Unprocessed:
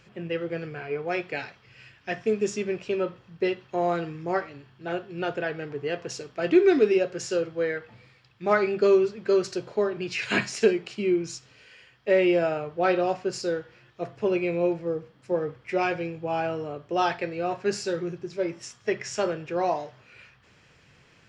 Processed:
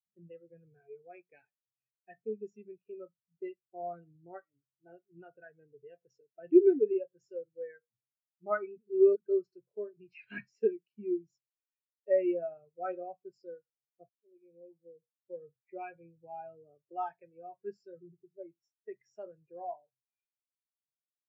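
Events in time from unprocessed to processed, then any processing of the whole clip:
0:08.78–0:09.20: reverse
0:14.09–0:15.49: fade in
whole clip: dynamic equaliser 400 Hz, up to −6 dB, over −34 dBFS, Q 0.75; every bin expanded away from the loudest bin 2.5 to 1

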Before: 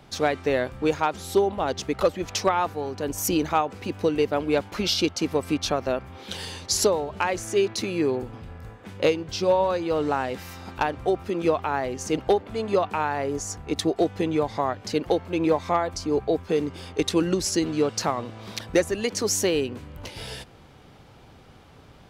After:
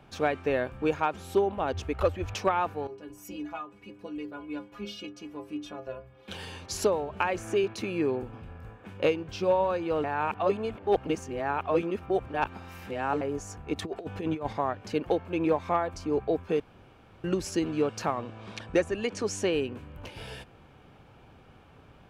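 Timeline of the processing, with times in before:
0:01.73–0:02.34: low shelf with overshoot 120 Hz +7.5 dB, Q 3
0:02.87–0:06.28: stiff-string resonator 61 Hz, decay 0.56 s, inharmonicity 0.03
0:07.19–0:07.64: multiband upward and downward compressor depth 70%
0:10.04–0:13.21: reverse
0:13.82–0:14.53: compressor whose output falls as the input rises −27 dBFS, ratio −0.5
0:16.60–0:17.24: fill with room tone
0:18.19–0:19.53: low-pass filter 9,400 Hz 24 dB per octave
whole clip: high shelf with overshoot 3,300 Hz −6.5 dB, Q 1.5; notch filter 2,000 Hz, Q 10; level −4 dB

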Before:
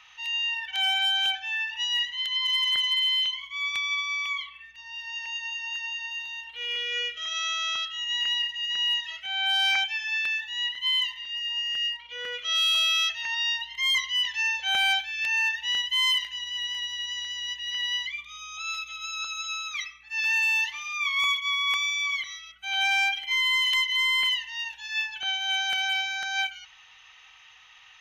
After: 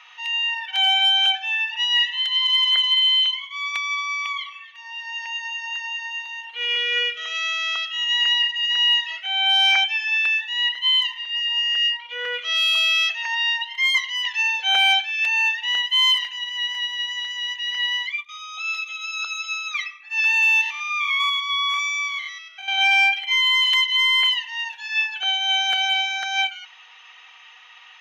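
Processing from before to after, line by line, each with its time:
0:01.46–0:01.91: delay throw 530 ms, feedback 10%, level −17 dB
0:04.19–0:08.46: repeating echo 268 ms, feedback 18%, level −19 dB
0:17.76–0:18.29: downward expander −37 dBFS
0:20.61–0:22.81: spectrum averaged block by block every 100 ms
whole clip: high-pass filter 510 Hz 12 dB per octave; high-shelf EQ 4,400 Hz −10.5 dB; comb filter 4.2 ms, depth 49%; level +7.5 dB

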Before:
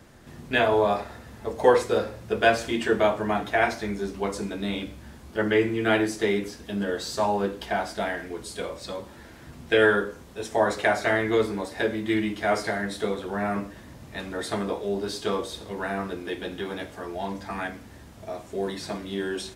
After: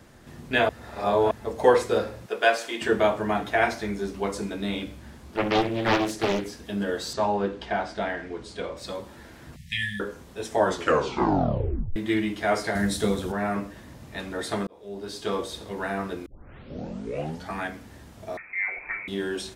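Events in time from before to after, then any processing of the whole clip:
0:00.69–0:01.31: reverse
0:02.26–0:02.82: high-pass filter 470 Hz
0:04.98–0:06.46: highs frequency-modulated by the lows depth 0.73 ms
0:07.13–0:08.77: high-frequency loss of the air 99 metres
0:09.56–0:10.00: linear-phase brick-wall band-stop 210–1,700 Hz
0:10.58: tape stop 1.38 s
0:12.75–0:13.32: bass and treble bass +11 dB, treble +10 dB
0:14.67–0:15.41: fade in
0:16.26: tape start 1.28 s
0:18.37–0:19.08: voice inversion scrambler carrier 2,500 Hz

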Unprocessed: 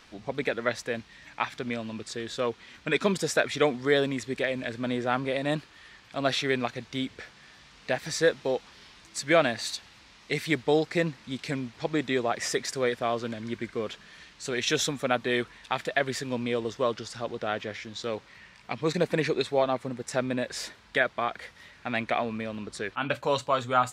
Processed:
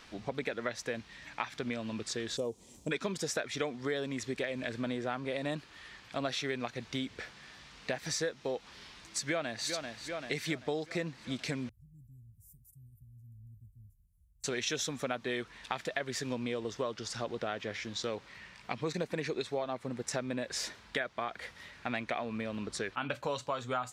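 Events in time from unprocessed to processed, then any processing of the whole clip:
0:02.37–0:02.91: drawn EQ curve 520 Hz 0 dB, 960 Hz −8 dB, 1,500 Hz −27 dB, 2,800 Hz −16 dB, 4,400 Hz −10 dB, 7,500 Hz +10 dB
0:09.22–0:09.69: delay throw 390 ms, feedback 60%, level −13.5 dB
0:11.69–0:14.44: inverse Chebyshev band-stop filter 490–3,600 Hz, stop band 80 dB
whole clip: dynamic equaliser 6,000 Hz, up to +4 dB, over −50 dBFS, Q 2.4; downward compressor 5 to 1, threshold −32 dBFS

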